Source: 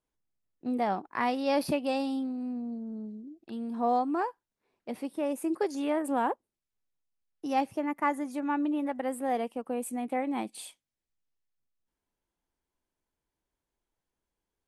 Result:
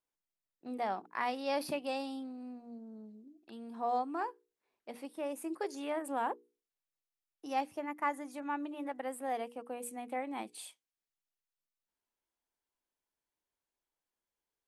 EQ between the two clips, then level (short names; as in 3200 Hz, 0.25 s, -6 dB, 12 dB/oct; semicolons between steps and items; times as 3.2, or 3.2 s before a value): low shelf 280 Hz -11.5 dB; notches 60/120/180/240/300/360/420/480 Hz; -4.0 dB